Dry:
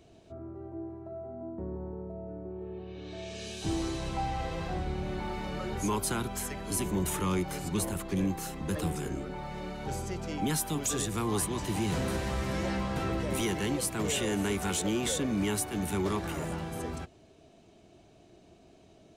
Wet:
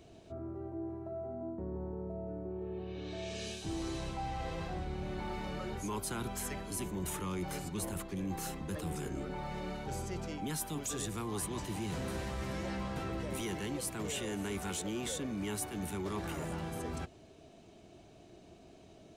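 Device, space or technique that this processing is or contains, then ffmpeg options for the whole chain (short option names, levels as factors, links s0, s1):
compression on the reversed sound: -af "areverse,acompressor=threshold=0.0141:ratio=4,areverse,volume=1.12"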